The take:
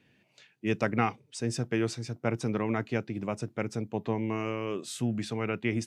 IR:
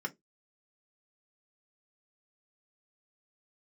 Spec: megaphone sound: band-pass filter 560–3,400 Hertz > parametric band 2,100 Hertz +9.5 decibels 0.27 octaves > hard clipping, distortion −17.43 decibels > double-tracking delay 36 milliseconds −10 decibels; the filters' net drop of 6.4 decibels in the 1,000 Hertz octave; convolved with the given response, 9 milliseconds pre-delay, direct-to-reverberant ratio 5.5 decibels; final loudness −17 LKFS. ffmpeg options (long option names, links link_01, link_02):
-filter_complex "[0:a]equalizer=frequency=1000:width_type=o:gain=-8.5,asplit=2[link_01][link_02];[1:a]atrim=start_sample=2205,adelay=9[link_03];[link_02][link_03]afir=irnorm=-1:irlink=0,volume=-8dB[link_04];[link_01][link_04]amix=inputs=2:normalize=0,highpass=560,lowpass=3400,equalizer=frequency=2100:width_type=o:width=0.27:gain=9.5,asoftclip=type=hard:threshold=-22.5dB,asplit=2[link_05][link_06];[link_06]adelay=36,volume=-10dB[link_07];[link_05][link_07]amix=inputs=2:normalize=0,volume=19.5dB"